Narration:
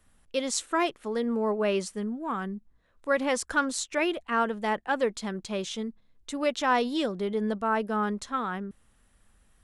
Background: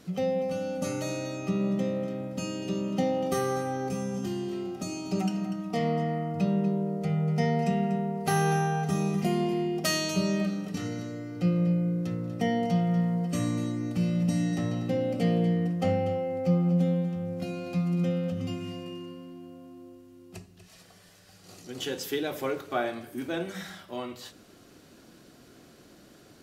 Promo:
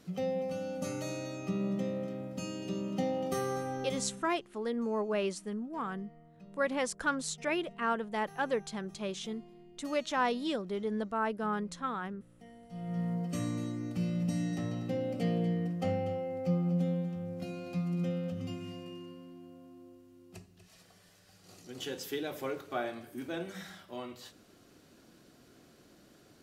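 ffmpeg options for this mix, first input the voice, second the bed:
-filter_complex "[0:a]adelay=3500,volume=0.531[s0];[1:a]volume=5.96,afade=t=out:st=3.85:d=0.45:silence=0.0841395,afade=t=in:st=12.69:d=0.42:silence=0.0891251[s1];[s0][s1]amix=inputs=2:normalize=0"

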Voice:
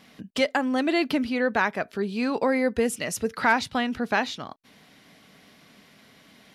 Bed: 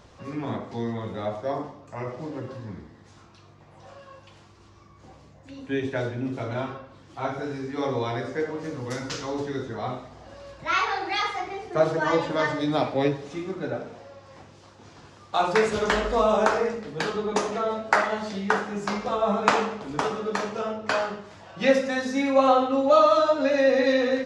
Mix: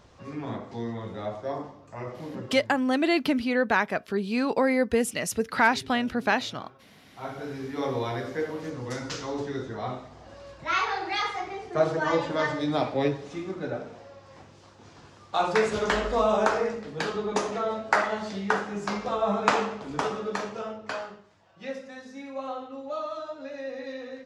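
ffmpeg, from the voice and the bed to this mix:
-filter_complex "[0:a]adelay=2150,volume=1[s0];[1:a]volume=4.22,afade=t=out:st=2.42:d=0.39:silence=0.188365,afade=t=in:st=6.92:d=0.75:silence=0.158489,afade=t=out:st=20.16:d=1.18:silence=0.199526[s1];[s0][s1]amix=inputs=2:normalize=0"

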